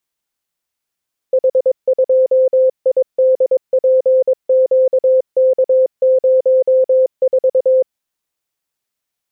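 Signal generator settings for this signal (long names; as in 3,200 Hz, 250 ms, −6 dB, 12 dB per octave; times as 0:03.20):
Morse code "H2IDPQK04" 22 words per minute 519 Hz −8 dBFS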